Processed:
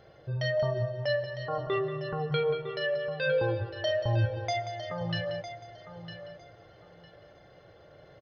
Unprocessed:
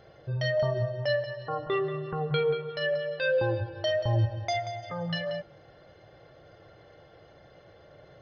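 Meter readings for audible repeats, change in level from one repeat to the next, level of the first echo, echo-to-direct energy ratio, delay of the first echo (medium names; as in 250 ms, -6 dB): 2, -13.5 dB, -11.0 dB, -11.0 dB, 955 ms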